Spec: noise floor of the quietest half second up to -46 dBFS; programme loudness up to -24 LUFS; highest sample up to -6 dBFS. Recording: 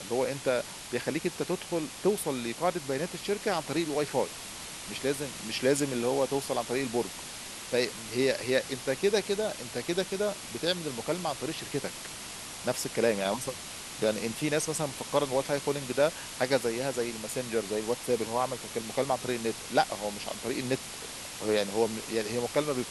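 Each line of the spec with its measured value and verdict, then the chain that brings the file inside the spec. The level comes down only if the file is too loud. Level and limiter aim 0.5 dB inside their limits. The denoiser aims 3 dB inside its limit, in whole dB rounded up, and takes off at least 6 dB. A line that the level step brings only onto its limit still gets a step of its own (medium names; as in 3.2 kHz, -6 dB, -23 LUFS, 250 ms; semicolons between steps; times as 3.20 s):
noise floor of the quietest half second -42 dBFS: fail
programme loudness -31.0 LUFS: pass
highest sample -11.0 dBFS: pass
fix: noise reduction 7 dB, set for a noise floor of -42 dBFS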